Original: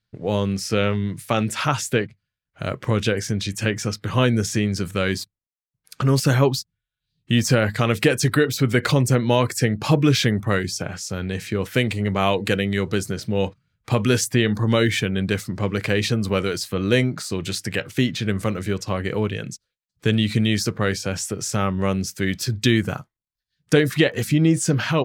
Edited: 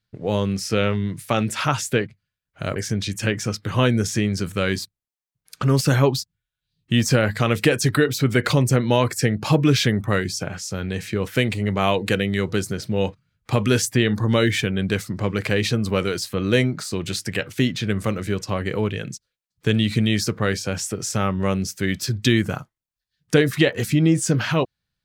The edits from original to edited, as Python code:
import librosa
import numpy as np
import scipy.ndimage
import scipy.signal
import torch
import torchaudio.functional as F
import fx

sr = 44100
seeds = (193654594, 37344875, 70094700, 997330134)

y = fx.edit(x, sr, fx.cut(start_s=2.76, length_s=0.39), tone=tone)